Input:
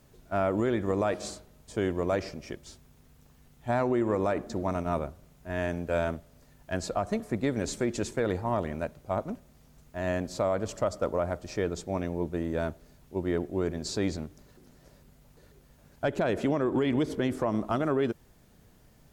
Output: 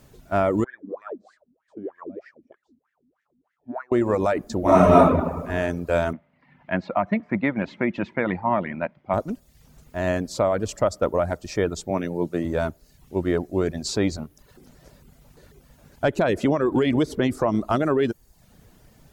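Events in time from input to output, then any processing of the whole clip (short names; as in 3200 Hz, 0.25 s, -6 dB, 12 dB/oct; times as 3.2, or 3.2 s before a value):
0.64–3.92 wah 3.2 Hz 230–1900 Hz, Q 11
4.61–5.03 reverb throw, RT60 1.4 s, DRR -10 dB
6.13–9.14 speaker cabinet 160–2800 Hz, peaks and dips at 190 Hz +6 dB, 430 Hz -10 dB, 950 Hz +4 dB, 2100 Hz +8 dB
11.9–12.45 HPF 110 Hz 24 dB/oct
whole clip: reverb removal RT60 0.59 s; gain +7 dB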